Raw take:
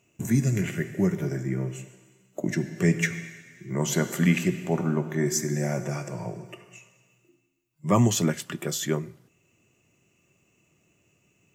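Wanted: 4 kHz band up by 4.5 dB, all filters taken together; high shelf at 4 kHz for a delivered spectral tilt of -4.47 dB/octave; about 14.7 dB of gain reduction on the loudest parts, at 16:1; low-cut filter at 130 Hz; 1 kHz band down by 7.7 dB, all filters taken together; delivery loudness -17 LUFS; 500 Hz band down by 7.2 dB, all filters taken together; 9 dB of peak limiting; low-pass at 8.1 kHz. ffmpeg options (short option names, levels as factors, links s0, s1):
-af "highpass=130,lowpass=8100,equalizer=f=500:t=o:g=-9,equalizer=f=1000:t=o:g=-8,highshelf=f=4000:g=4.5,equalizer=f=4000:t=o:g=4,acompressor=threshold=0.0224:ratio=16,volume=15.8,alimiter=limit=0.473:level=0:latency=1"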